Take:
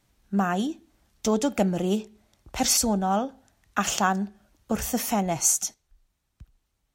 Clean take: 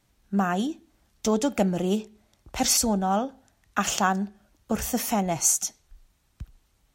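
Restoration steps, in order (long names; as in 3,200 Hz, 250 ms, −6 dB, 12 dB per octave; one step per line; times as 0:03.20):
level 0 dB, from 0:05.74 +9 dB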